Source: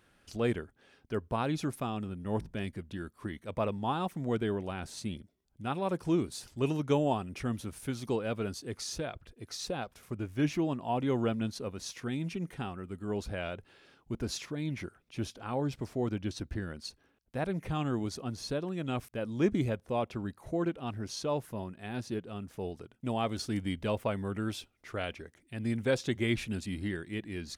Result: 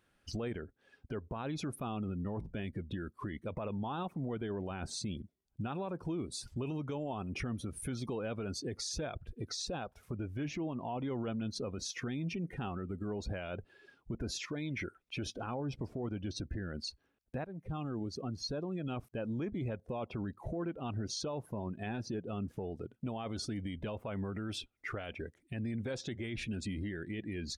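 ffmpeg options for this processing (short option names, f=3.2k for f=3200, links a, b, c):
-filter_complex "[0:a]asettb=1/sr,asplit=3[a][b][c];[a]atrim=end=14.384[d];[b]atrim=start=14.38:end=15.26,asetpts=PTS-STARTPTS,afade=t=in:d=0.004:c=qsin,afade=t=out:st=0.876:d=0.004:c=qsin,equalizer=f=150:w=0.47:g=-7[e];[c]atrim=start=15.256[f];[d][e]acrossfade=d=0.004:c1=hsin:c2=qsin[g];[g][f]acrossfade=d=0.004:c1=qsin:c2=hsin,asplit=2[h][i];[h]atrim=end=17.45,asetpts=PTS-STARTPTS,afade=t=out:st=17.446:d=0.004:c=hsin:silence=0.177828[j];[i]atrim=start=17.45,asetpts=PTS-STARTPTS,afade=t=in:d=2.76:silence=0.177828[k];[j][k]concat=n=2:v=0:a=1,afftdn=nr=19:nf=-49,acompressor=threshold=-46dB:ratio=3,alimiter=level_in=18dB:limit=-24dB:level=0:latency=1:release=26,volume=-18dB,volume=11.5dB"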